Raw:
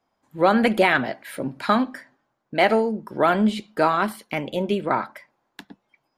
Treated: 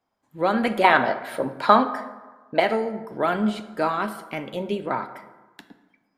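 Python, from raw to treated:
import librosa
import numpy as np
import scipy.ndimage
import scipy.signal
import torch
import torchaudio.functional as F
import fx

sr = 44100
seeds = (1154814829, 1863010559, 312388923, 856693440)

y = fx.graphic_eq_10(x, sr, hz=(500, 1000, 4000), db=(8, 11, 5), at=(0.84, 2.6))
y = fx.rev_plate(y, sr, seeds[0], rt60_s=1.3, hf_ratio=0.5, predelay_ms=0, drr_db=9.5)
y = F.gain(torch.from_numpy(y), -4.5).numpy()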